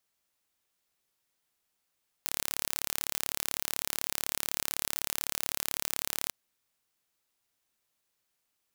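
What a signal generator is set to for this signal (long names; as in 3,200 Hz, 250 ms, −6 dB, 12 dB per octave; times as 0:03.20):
impulse train 35.9 per second, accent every 0, −4 dBFS 4.04 s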